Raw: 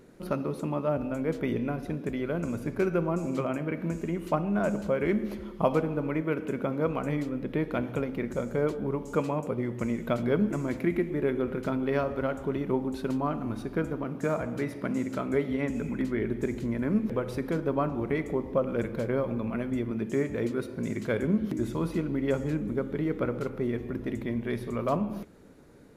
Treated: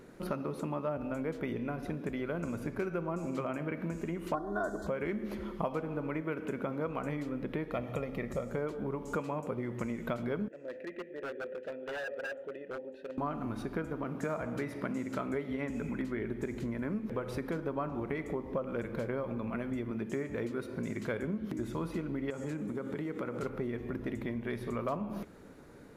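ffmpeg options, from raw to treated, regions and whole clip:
ffmpeg -i in.wav -filter_complex "[0:a]asettb=1/sr,asplit=3[link_01][link_02][link_03];[link_01]atrim=end=4.344[link_04];[link_02]atrim=start=4.34:end=4.87,asetpts=PTS-STARTPTS,afade=type=in:duration=0.004:curve=qsin,afade=type=out:start_time=0.526:duration=0.004:curve=qsin,asuperstop=centerf=2500:order=8:qfactor=1.6,aecho=1:1:2.8:0.82,atrim=end_sample=23373[link_05];[link_03]atrim=start=4.866[link_06];[link_04][link_05]acrossfade=duration=0.004:curve1=hsin:curve2=qsin[link_07];[link_07][link_06]acrossfade=duration=0.004:curve1=qsin:curve2=hsin,asettb=1/sr,asplit=3[link_08][link_09][link_10];[link_08]atrim=end=7.714[link_11];[link_09]atrim=start=7.71:end=8.5,asetpts=PTS-STARTPTS,afade=type=in:duration=0.004:curve=qsin,afade=type=out:start_time=0.786:duration=0.004:curve=qsin,bandreject=frequency=1500:width=5.1,aecho=1:1:1.6:0.42,atrim=end_sample=34839[link_12];[link_10]atrim=start=8.496[link_13];[link_11][link_12]acrossfade=duration=0.004:curve1=hsin:curve2=qsin[link_14];[link_14][link_13]acrossfade=duration=0.004:curve1=qsin:curve2=hsin,asettb=1/sr,asplit=3[link_15][link_16][link_17];[link_15]atrim=end=10.484[link_18];[link_16]atrim=start=10.48:end=13.18,asetpts=PTS-STARTPTS,afade=type=in:duration=0.004:curve=qsin,afade=type=out:start_time=2.696:duration=0.004:curve=qsin,asplit=3[link_19][link_20][link_21];[link_19]bandpass=frequency=530:width_type=q:width=8,volume=0dB[link_22];[link_20]bandpass=frequency=1840:width_type=q:width=8,volume=-6dB[link_23];[link_21]bandpass=frequency=2480:width_type=q:width=8,volume=-9dB[link_24];[link_22][link_23][link_24]amix=inputs=3:normalize=0,bandreject=frequency=2200:width=6.7,aeval=exprs='0.0178*(abs(mod(val(0)/0.0178+3,4)-2)-1)':channel_layout=same[link_25];[link_17]atrim=start=13.176[link_26];[link_18][link_25]acrossfade=duration=0.004:curve1=hsin:curve2=qsin[link_27];[link_27][link_26]acrossfade=duration=0.004:curve1=qsin:curve2=hsin,asettb=1/sr,asplit=3[link_28][link_29][link_30];[link_28]atrim=end=22.304[link_31];[link_29]atrim=start=22.3:end=23.43,asetpts=PTS-STARTPTS,afade=type=in:duration=0.004:curve=qsin,afade=type=out:start_time=1.126:duration=0.004:curve=qsin,highpass=120,equalizer=frequency=7800:width_type=o:width=0.82:gain=9,acompressor=threshold=-32dB:ratio=3:attack=3.2:release=140:knee=1:detection=peak[link_32];[link_30]atrim=start=23.426[link_33];[link_31][link_32]acrossfade=duration=0.004:curve1=hsin:curve2=qsin[link_34];[link_34][link_33]acrossfade=duration=0.004:curve1=qsin:curve2=hsin,acompressor=threshold=-34dB:ratio=4,equalizer=frequency=1300:width=0.65:gain=4" out.wav

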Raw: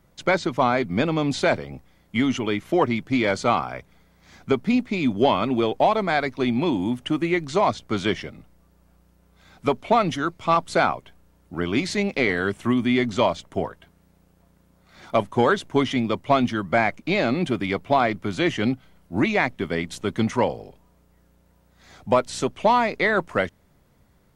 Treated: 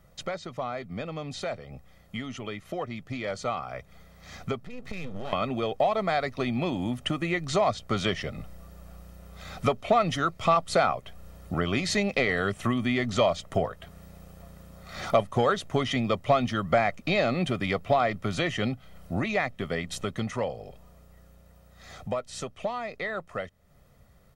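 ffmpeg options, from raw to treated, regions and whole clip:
ffmpeg -i in.wav -filter_complex "[0:a]asettb=1/sr,asplit=3[link_01][link_02][link_03];[link_01]atrim=end=4.624[link_04];[link_02]atrim=start=4.62:end=5.33,asetpts=PTS-STARTPTS,afade=type=in:duration=0.004:curve=qsin,afade=type=out:start_time=0.706:duration=0.004:curve=qsin,equalizer=frequency=150:width=4.4:gain=13,acompressor=threshold=-31dB:ratio=10:attack=3.2:release=140:knee=1:detection=peak,aeval=exprs='max(val(0),0)':channel_layout=same[link_05];[link_03]atrim=start=5.326[link_06];[link_04][link_05]acrossfade=duration=0.004:curve1=hsin:curve2=qsin[link_07];[link_07][link_06]acrossfade=duration=0.004:curve1=qsin:curve2=hsin,acompressor=threshold=-38dB:ratio=2.5,aecho=1:1:1.6:0.51,dynaudnorm=framelen=630:gausssize=17:maxgain=10dB" out.wav

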